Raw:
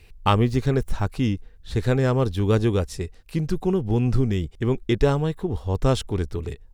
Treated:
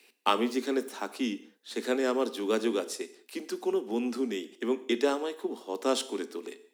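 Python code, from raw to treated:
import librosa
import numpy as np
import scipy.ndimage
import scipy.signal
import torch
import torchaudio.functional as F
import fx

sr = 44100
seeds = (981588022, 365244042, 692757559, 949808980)

y = scipy.signal.sosfilt(scipy.signal.butter(16, 220.0, 'highpass', fs=sr, output='sos'), x)
y = fx.high_shelf(y, sr, hz=3000.0, db=7.0)
y = fx.rev_gated(y, sr, seeds[0], gate_ms=230, shape='falling', drr_db=11.5)
y = y * librosa.db_to_amplitude(-5.5)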